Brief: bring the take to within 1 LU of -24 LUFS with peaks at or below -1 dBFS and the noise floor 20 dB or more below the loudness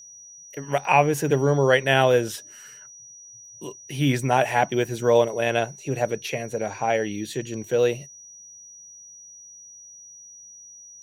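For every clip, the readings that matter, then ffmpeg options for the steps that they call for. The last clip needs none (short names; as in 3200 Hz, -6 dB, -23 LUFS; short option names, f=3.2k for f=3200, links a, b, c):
steady tone 5800 Hz; tone level -43 dBFS; loudness -22.5 LUFS; peak -4.0 dBFS; loudness target -24.0 LUFS
-> -af "bandreject=f=5.8k:w=30"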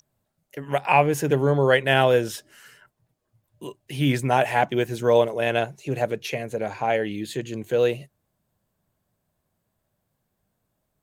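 steady tone none; loudness -22.5 LUFS; peak -4.0 dBFS; loudness target -24.0 LUFS
-> -af "volume=-1.5dB"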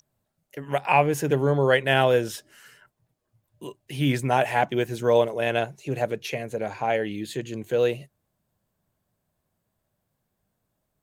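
loudness -24.0 LUFS; peak -5.5 dBFS; noise floor -79 dBFS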